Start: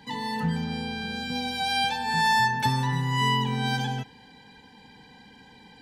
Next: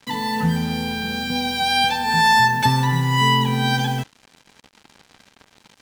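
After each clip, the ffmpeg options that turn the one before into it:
ffmpeg -i in.wav -af "acrusher=bits=6:mix=0:aa=0.5,volume=7dB" out.wav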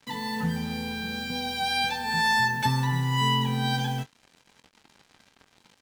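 ffmpeg -i in.wav -filter_complex "[0:a]asplit=2[link_01][link_02];[link_02]adelay=22,volume=-10.5dB[link_03];[link_01][link_03]amix=inputs=2:normalize=0,volume=-7.5dB" out.wav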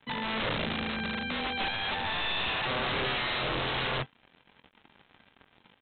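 ffmpeg -i in.wav -af "alimiter=limit=-21.5dB:level=0:latency=1:release=12,aresample=8000,aeval=exprs='(mod(20*val(0)+1,2)-1)/20':channel_layout=same,aresample=44100" out.wav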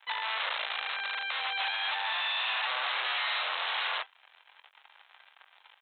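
ffmpeg -i in.wav -af "acompressor=threshold=-35dB:ratio=2,highpass=frequency=760:width=0.5412,highpass=frequency=760:width=1.3066,volume=4.5dB" out.wav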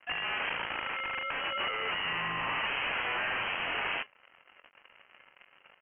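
ffmpeg -i in.wav -af "lowpass=frequency=3100:width_type=q:width=0.5098,lowpass=frequency=3100:width_type=q:width=0.6013,lowpass=frequency=3100:width_type=q:width=0.9,lowpass=frequency=3100:width_type=q:width=2.563,afreqshift=-3700" out.wav

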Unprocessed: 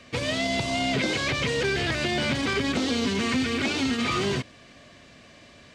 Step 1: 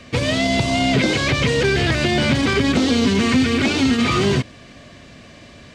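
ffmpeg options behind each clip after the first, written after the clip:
ffmpeg -i in.wav -af "lowshelf=frequency=300:gain=6,volume=6dB" out.wav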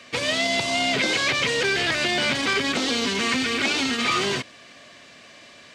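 ffmpeg -i in.wav -af "highpass=frequency=880:poles=1" out.wav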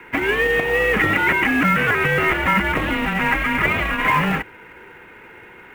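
ffmpeg -i in.wav -af "highpass=frequency=320:width_type=q:width=0.5412,highpass=frequency=320:width_type=q:width=1.307,lowpass=frequency=2600:width_type=q:width=0.5176,lowpass=frequency=2600:width_type=q:width=0.7071,lowpass=frequency=2600:width_type=q:width=1.932,afreqshift=-210,acrusher=bits=6:mode=log:mix=0:aa=0.000001,volume=7dB" out.wav

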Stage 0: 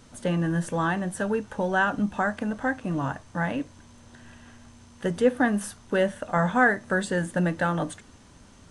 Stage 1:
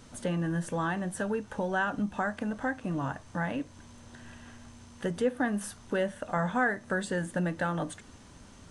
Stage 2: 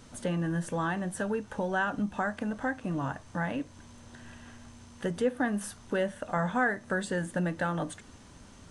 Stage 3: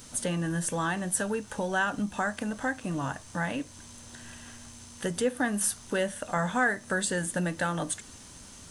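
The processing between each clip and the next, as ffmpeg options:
ffmpeg -i in.wav -af "acompressor=threshold=-36dB:ratio=1.5" out.wav
ffmpeg -i in.wav -af anull out.wav
ffmpeg -i in.wav -af "crystalizer=i=3.5:c=0" out.wav

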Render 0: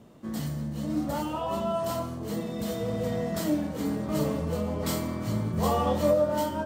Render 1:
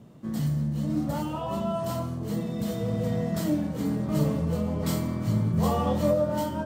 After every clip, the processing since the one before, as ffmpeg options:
ffmpeg -i in.wav -af "equalizer=frequency=140:width_type=o:width=1.3:gain=9,volume=-2dB" out.wav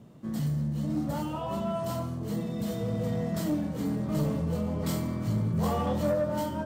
ffmpeg -i in.wav -af "asoftclip=type=tanh:threshold=-18.5dB,volume=-1.5dB" out.wav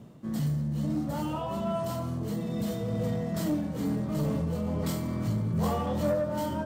ffmpeg -i in.wav -filter_complex "[0:a]tremolo=f=2.3:d=0.34,asplit=2[link_01][link_02];[link_02]alimiter=level_in=5dB:limit=-24dB:level=0:latency=1,volume=-5dB,volume=0.5dB[link_03];[link_01][link_03]amix=inputs=2:normalize=0,volume=-3dB" out.wav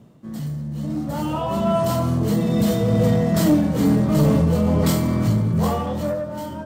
ffmpeg -i in.wav -af "dynaudnorm=framelen=210:gausssize=13:maxgain=12.5dB" out.wav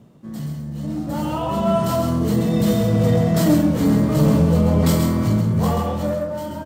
ffmpeg -i in.wav -af "aecho=1:1:133:0.501" out.wav

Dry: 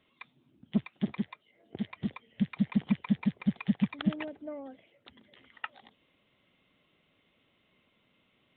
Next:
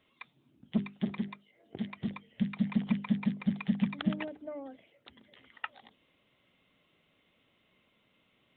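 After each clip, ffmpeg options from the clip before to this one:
ffmpeg -i in.wav -af "bandreject=frequency=50:width_type=h:width=6,bandreject=frequency=100:width_type=h:width=6,bandreject=frequency=150:width_type=h:width=6,bandreject=frequency=200:width_type=h:width=6,bandreject=frequency=250:width_type=h:width=6,bandreject=frequency=300:width_type=h:width=6,bandreject=frequency=350:width_type=h:width=6,bandreject=frequency=400:width_type=h:width=6" out.wav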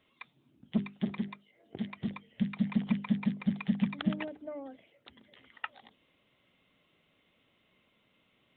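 ffmpeg -i in.wav -af anull out.wav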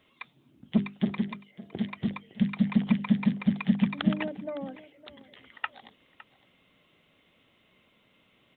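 ffmpeg -i in.wav -af "aecho=1:1:560:0.126,volume=5.5dB" out.wav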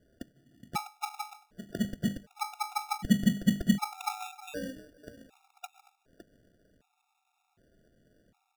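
ffmpeg -i in.wav -af "acrusher=samples=42:mix=1:aa=0.000001,afftfilt=real='re*gt(sin(2*PI*0.66*pts/sr)*(1-2*mod(floor(b*sr/1024/710),2)),0)':imag='im*gt(sin(2*PI*0.66*pts/sr)*(1-2*mod(floor(b*sr/1024/710),2)),0)':win_size=1024:overlap=0.75" out.wav

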